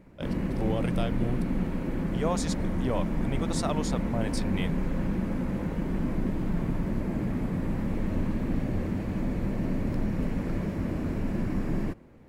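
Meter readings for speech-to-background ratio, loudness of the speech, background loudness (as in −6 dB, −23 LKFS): −3.5 dB, −34.5 LKFS, −31.0 LKFS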